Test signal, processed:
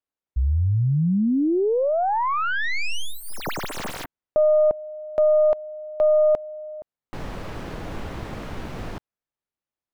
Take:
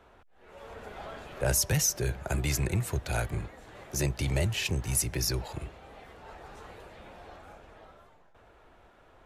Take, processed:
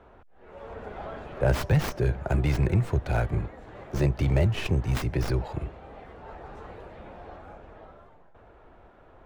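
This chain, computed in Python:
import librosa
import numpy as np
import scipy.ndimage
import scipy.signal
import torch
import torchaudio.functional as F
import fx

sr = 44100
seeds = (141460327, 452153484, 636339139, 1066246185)

y = fx.tracing_dist(x, sr, depth_ms=0.25)
y = fx.lowpass(y, sr, hz=1100.0, slope=6)
y = y * 10.0 ** (6.0 / 20.0)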